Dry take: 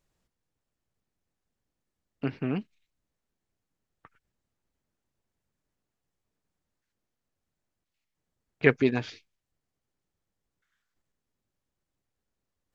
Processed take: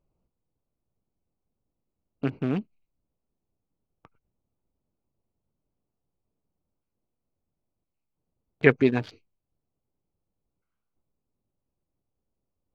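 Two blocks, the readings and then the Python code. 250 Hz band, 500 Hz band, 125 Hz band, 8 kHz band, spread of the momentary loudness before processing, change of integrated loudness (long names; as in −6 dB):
+3.0 dB, +3.0 dB, +3.0 dB, can't be measured, 13 LU, +2.5 dB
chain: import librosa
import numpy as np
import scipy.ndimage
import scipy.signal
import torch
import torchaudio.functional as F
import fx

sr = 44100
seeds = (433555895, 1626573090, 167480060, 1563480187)

y = fx.wiener(x, sr, points=25)
y = fx.dynamic_eq(y, sr, hz=4600.0, q=0.75, threshold_db=-41.0, ratio=4.0, max_db=-3)
y = y * librosa.db_to_amplitude(3.0)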